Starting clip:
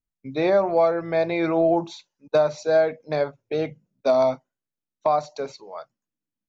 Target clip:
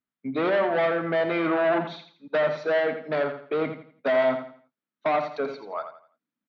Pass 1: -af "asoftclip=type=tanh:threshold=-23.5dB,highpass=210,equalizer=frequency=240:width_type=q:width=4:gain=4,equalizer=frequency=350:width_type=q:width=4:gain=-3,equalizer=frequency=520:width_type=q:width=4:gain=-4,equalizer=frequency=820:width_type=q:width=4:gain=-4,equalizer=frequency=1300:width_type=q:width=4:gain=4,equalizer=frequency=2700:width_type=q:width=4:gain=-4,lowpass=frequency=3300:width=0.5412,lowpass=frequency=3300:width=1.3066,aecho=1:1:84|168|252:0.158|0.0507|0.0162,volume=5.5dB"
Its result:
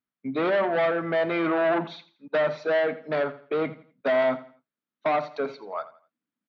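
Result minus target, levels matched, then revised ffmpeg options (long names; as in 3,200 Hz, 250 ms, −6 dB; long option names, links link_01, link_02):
echo-to-direct −7 dB
-af "asoftclip=type=tanh:threshold=-23.5dB,highpass=210,equalizer=frequency=240:width_type=q:width=4:gain=4,equalizer=frequency=350:width_type=q:width=4:gain=-3,equalizer=frequency=520:width_type=q:width=4:gain=-4,equalizer=frequency=820:width_type=q:width=4:gain=-4,equalizer=frequency=1300:width_type=q:width=4:gain=4,equalizer=frequency=2700:width_type=q:width=4:gain=-4,lowpass=frequency=3300:width=0.5412,lowpass=frequency=3300:width=1.3066,aecho=1:1:84|168|252|336:0.355|0.114|0.0363|0.0116,volume=5.5dB"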